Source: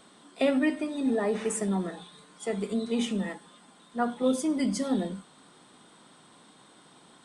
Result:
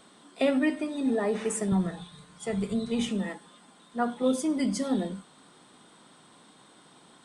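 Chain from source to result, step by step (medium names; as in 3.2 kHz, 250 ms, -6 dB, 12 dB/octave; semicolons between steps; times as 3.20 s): 1.72–3.09 s: resonant low shelf 180 Hz +13 dB, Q 1.5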